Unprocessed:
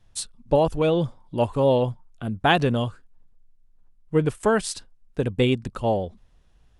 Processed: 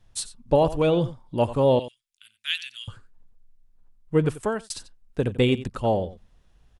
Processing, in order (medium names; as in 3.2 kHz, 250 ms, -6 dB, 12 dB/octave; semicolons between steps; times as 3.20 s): 1.79–2.88 s: inverse Chebyshev high-pass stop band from 900 Hz, stop band 50 dB; delay 90 ms -15.5 dB; 4.29–4.70 s: fade out